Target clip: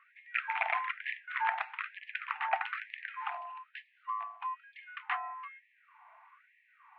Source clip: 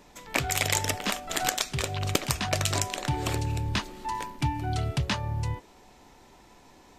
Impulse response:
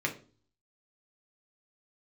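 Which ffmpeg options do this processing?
-filter_complex "[0:a]asettb=1/sr,asplit=3[a][b][c];[a]atrim=end=3.304[d];[b]atrim=start=3.3:end=4.76,asetpts=PTS-STARTPTS,afade=t=in:d=0.004:c=qsin,afade=t=out:st=1.456:d=0.004:c=qsin,equalizer=f=1.8k:t=o:w=1.1:g=-11[e];[c]atrim=start=4.756[f];[d][e]acrossfade=d=0.004:c1=hsin:c2=qsin[g];[g][f]acrossfade=d=0.004:c1=qsin:c2=hsin,highpass=f=190:t=q:w=0.5412,highpass=f=190:t=q:w=1.307,lowpass=f=2.2k:t=q:w=0.5176,lowpass=f=2.2k:t=q:w=0.7071,lowpass=f=2.2k:t=q:w=1.932,afreqshift=150,afftfilt=real='re*gte(b*sr/1024,620*pow(1700/620,0.5+0.5*sin(2*PI*1.1*pts/sr)))':imag='im*gte(b*sr/1024,620*pow(1700/620,0.5+0.5*sin(2*PI*1.1*pts/sr)))':win_size=1024:overlap=0.75"

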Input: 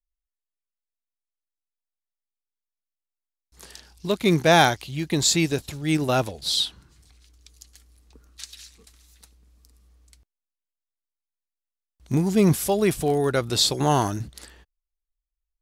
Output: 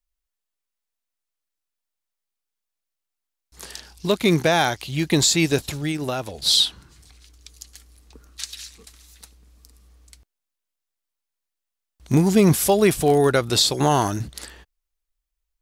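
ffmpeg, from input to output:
-filter_complex "[0:a]lowshelf=f=370:g=-3,alimiter=limit=-13.5dB:level=0:latency=1:release=305,asettb=1/sr,asplit=3[a][b][c];[a]atrim=end=5.744[d];[b]atrim=start=5.74:end=6.38,asetpts=PTS-STARTPTS,afade=t=in:d=0.004:c=qsin,afade=t=out:st=0.636:d=0.004:c=qsin,acompressor=threshold=-29dB:ratio=10[e];[c]atrim=start=6.376[f];[d][e]acrossfade=d=0.004:c1=hsin:c2=qsin[g];[g][f]acrossfade=d=0.004:c1=qsin:c2=hsin,volume=7dB"

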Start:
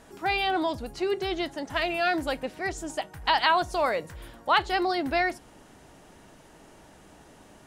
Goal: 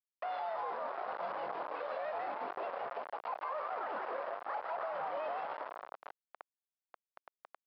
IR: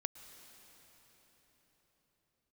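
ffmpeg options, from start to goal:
-filter_complex "[0:a]areverse,acompressor=threshold=-39dB:ratio=10,areverse[a];[1:a]atrim=start_sample=2205[b];[a][b]afir=irnorm=-1:irlink=0,afreqshift=-370,asetrate=76340,aresample=44100,atempo=0.577676,asplit=8[c][d][e][f][g][h][i][j];[d]adelay=159,afreqshift=140,volume=-4dB[k];[e]adelay=318,afreqshift=280,volume=-9.4dB[l];[f]adelay=477,afreqshift=420,volume=-14.7dB[m];[g]adelay=636,afreqshift=560,volume=-20.1dB[n];[h]adelay=795,afreqshift=700,volume=-25.4dB[o];[i]adelay=954,afreqshift=840,volume=-30.8dB[p];[j]adelay=1113,afreqshift=980,volume=-36.1dB[q];[c][k][l][m][n][o][p][q]amix=inputs=8:normalize=0,aresample=11025,acrusher=bits=6:mix=0:aa=0.000001,aresample=44100,asuperpass=centerf=870:order=4:qfactor=1.1,alimiter=level_in=20.5dB:limit=-24dB:level=0:latency=1:release=79,volume=-20.5dB,volume=14dB"

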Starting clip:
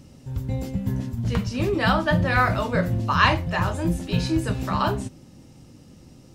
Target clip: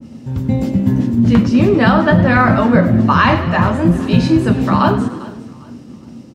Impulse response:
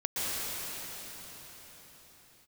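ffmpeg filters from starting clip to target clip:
-filter_complex "[0:a]highpass=86,equalizer=f=230:w=5.2:g=13,asplit=2[a][b];[b]aecho=0:1:401|802|1203:0.0891|0.033|0.0122[c];[a][c]amix=inputs=2:normalize=0,agate=range=-33dB:threshold=-42dB:ratio=3:detection=peak,lowpass=f=3.8k:p=1,asplit=2[d][e];[e]asplit=5[f][g][h][i][j];[f]adelay=99,afreqshift=49,volume=-14.5dB[k];[g]adelay=198,afreqshift=98,volume=-19.9dB[l];[h]adelay=297,afreqshift=147,volume=-25.2dB[m];[i]adelay=396,afreqshift=196,volume=-30.6dB[n];[j]adelay=495,afreqshift=245,volume=-35.9dB[o];[k][l][m][n][o]amix=inputs=5:normalize=0[p];[d][p]amix=inputs=2:normalize=0,alimiter=level_in=10dB:limit=-1dB:release=50:level=0:latency=1,adynamicequalizer=threshold=0.0398:dfrequency=2200:dqfactor=0.7:tfrequency=2200:tqfactor=0.7:attack=5:release=100:ratio=0.375:range=3:mode=cutabove:tftype=highshelf"

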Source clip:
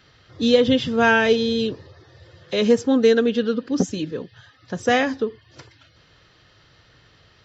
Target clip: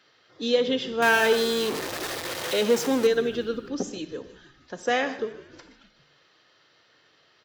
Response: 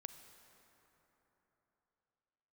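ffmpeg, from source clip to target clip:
-filter_complex "[0:a]asettb=1/sr,asplit=3[a][b][c];[a]atrim=end=1.024[d];[b]atrim=start=1.02:end=3.07,asetpts=PTS-STARTPTS,afade=t=in:d=0.004:c=qsin,afade=t=out:st=2.046:d=0.004:c=qsin,aeval=exprs='val(0)+0.5*0.112*sgn(val(0))':c=same[e];[c]atrim=start=3.066[f];[d][e]acrossfade=d=0.004:c1=hsin:c2=qsin[g];[g][f]acrossfade=d=0.004:c1=qsin:c2=hsin,highpass=310,asplit=6[h][i][j][k][l][m];[i]adelay=154,afreqshift=-59,volume=-19dB[n];[j]adelay=308,afreqshift=-118,volume=-23.9dB[o];[k]adelay=462,afreqshift=-177,volume=-28.8dB[p];[l]adelay=616,afreqshift=-236,volume=-33.6dB[q];[m]adelay=770,afreqshift=-295,volume=-38.5dB[r];[h][n][o][p][q][r]amix=inputs=6:normalize=0[s];[1:a]atrim=start_sample=2205,atrim=end_sample=6615,asetrate=41013,aresample=44100[t];[s][t]afir=irnorm=-1:irlink=0"

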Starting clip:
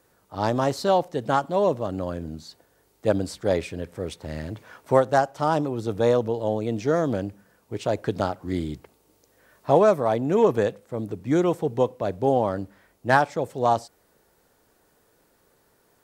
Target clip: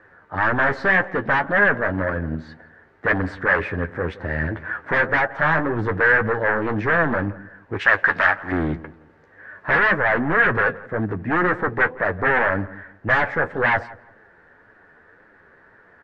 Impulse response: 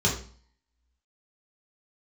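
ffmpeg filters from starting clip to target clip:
-filter_complex "[0:a]asplit=2[a][b];[b]aeval=exprs='0.631*sin(PI/2*7.94*val(0)/0.631)':c=same,volume=-5dB[c];[a][c]amix=inputs=2:normalize=0,flanger=delay=8.9:depth=4.4:regen=35:speed=1.9:shape=triangular,asoftclip=type=hard:threshold=-11.5dB,lowpass=f=1.7k:t=q:w=6.2,asettb=1/sr,asplit=3[d][e][f];[d]atrim=end=7.794[g];[e]atrim=start=7.79:end=8.52,asetpts=PTS-STARTPTS,afade=t=in:d=0.004:c=qsin,afade=t=out:st=0.726:d=0.004:c=qsin,tiltshelf=f=790:g=-9.5[h];[f]atrim=start=8.516[i];[g][h]acrossfade=d=0.004:c1=hsin:c2=qsin[j];[j][i]acrossfade=d=0.004:c1=qsin:c2=hsin,asplit=2[k][l];[l]adelay=170,lowpass=f=1.2k:p=1,volume=-17.5dB,asplit=2[m][n];[n]adelay=170,lowpass=f=1.2k:p=1,volume=0.28,asplit=2[o][p];[p]adelay=170,lowpass=f=1.2k:p=1,volume=0.28[q];[m][o][q]amix=inputs=3:normalize=0[r];[k][r]amix=inputs=2:normalize=0,volume=-7dB"

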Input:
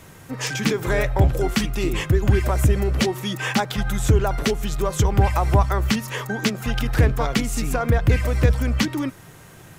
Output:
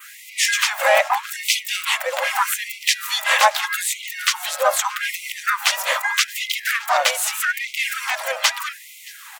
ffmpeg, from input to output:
-filter_complex "[0:a]adynamicequalizer=threshold=0.00708:dfrequency=4400:dqfactor=1.7:tfrequency=4400:tqfactor=1.7:attack=5:release=100:ratio=0.375:range=2.5:mode=cutabove:tftype=bell,apsyclip=12.5dB,asetrate=45938,aresample=44100,acrossover=split=130|1400[a][b][c];[a]acompressor=threshold=-16dB:ratio=8[d];[d][b][c]amix=inputs=3:normalize=0,asplit=3[e][f][g];[f]asetrate=22050,aresample=44100,atempo=2,volume=-16dB[h];[g]asetrate=55563,aresample=44100,atempo=0.793701,volume=-5dB[i];[e][h][i]amix=inputs=3:normalize=0,asplit=2[j][k];[k]aecho=0:1:623:0.0668[l];[j][l]amix=inputs=2:normalize=0,afftfilt=real='re*gte(b*sr/1024,480*pow(2000/480,0.5+0.5*sin(2*PI*0.81*pts/sr)))':imag='im*gte(b*sr/1024,480*pow(2000/480,0.5+0.5*sin(2*PI*0.81*pts/sr)))':win_size=1024:overlap=0.75,volume=-4dB"

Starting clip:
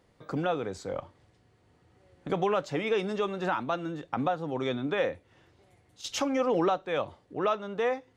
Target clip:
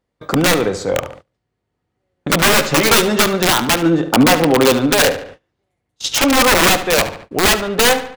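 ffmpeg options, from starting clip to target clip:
-filter_complex "[0:a]aeval=exprs='val(0)+0.000631*(sin(2*PI*50*n/s)+sin(2*PI*2*50*n/s)/2+sin(2*PI*3*50*n/s)/3+sin(2*PI*4*50*n/s)/4+sin(2*PI*5*50*n/s)/5)':c=same,lowshelf=f=77:g=-8.5,aeval=exprs='0.2*(cos(1*acos(clip(val(0)/0.2,-1,1)))-cos(1*PI/2))+0.0708*(cos(2*acos(clip(val(0)/0.2,-1,1)))-cos(2*PI/2))+0.0126*(cos(4*acos(clip(val(0)/0.2,-1,1)))-cos(4*PI/2))':c=same,aeval=exprs='(mod(15*val(0)+1,2)-1)/15':c=same,asettb=1/sr,asplit=3[a][b][c];[a]atrim=end=3.824[d];[b]atrim=start=3.82:end=4.73,asetpts=PTS-STARTPTS,afade=t=in:d=0.004:c=qsin,afade=t=out:st=0.906:d=0.004:c=qsin,equalizer=f=410:w=0.34:g=5.5[e];[c]atrim=start=4.726[f];[d][e]acrossfade=d=0.004:c1=hsin:c2=qsin[g];[g][f]acrossfade=d=0.004:c1=qsin:c2=hsin,asplit=2[h][i];[i]adelay=72,lowpass=f=4.1k:p=1,volume=-11dB,asplit=2[j][k];[k]adelay=72,lowpass=f=4.1k:p=1,volume=0.5,asplit=2[l][m];[m]adelay=72,lowpass=f=4.1k:p=1,volume=0.5,asplit=2[n][o];[o]adelay=72,lowpass=f=4.1k:p=1,volume=0.5,asplit=2[p][q];[q]adelay=72,lowpass=f=4.1k:p=1,volume=0.5[r];[h][j][l][n][p][r]amix=inputs=6:normalize=0,agate=range=-27dB:threshold=-51dB:ratio=16:detection=peak,asettb=1/sr,asplit=3[s][t][u];[s]atrim=end=2.434[v];[t]atrim=start=2.43:end=3.24,asetpts=PTS-STARTPTS,afade=t=in:d=0.004:c=qsin,afade=t=out:st=0.806:d=0.004:c=qsin,asplit=2[w][x];[x]adelay=13,volume=-4.5dB[y];[w][y]amix=inputs=2:normalize=0,atrim=end_sample=35721[z];[u]atrim=start=3.236[aa];[v][z]acrossfade=d=0.004:c1=hsin:c2=qsin[ab];[ab][aa]acrossfade=d=0.004:c1=qsin:c2=hsin,alimiter=level_in=18.5dB:limit=-1dB:release=50:level=0:latency=1,volume=-2dB"

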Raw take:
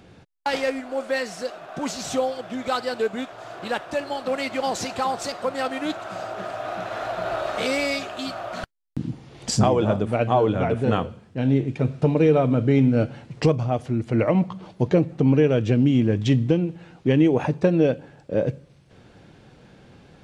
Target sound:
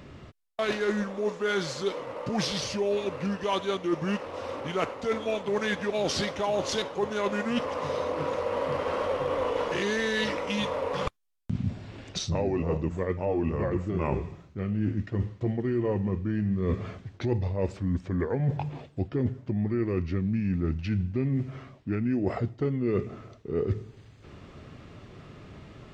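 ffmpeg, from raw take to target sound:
-af "areverse,acompressor=threshold=-27dB:ratio=12,areverse,asetrate=34398,aresample=44100,volume=3dB"

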